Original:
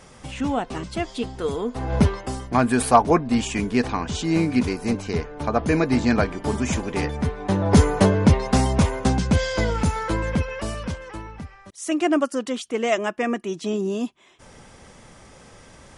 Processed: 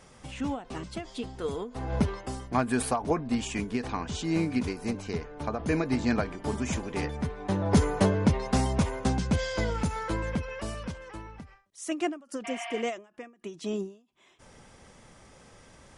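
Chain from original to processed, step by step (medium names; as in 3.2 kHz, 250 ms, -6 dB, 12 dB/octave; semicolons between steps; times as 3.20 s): spectral replace 12.47–12.79 s, 640–5300 Hz after; endings held to a fixed fall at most 160 dB/s; trim -6.5 dB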